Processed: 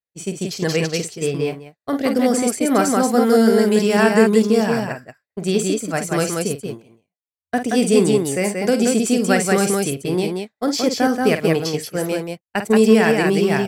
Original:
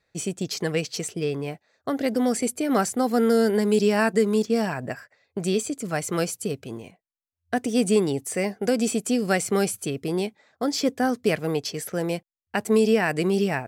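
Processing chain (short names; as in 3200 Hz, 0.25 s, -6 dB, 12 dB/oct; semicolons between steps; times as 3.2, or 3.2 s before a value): loudspeakers at several distances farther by 17 m -9 dB, 62 m -3 dB; expander -24 dBFS; gain +4.5 dB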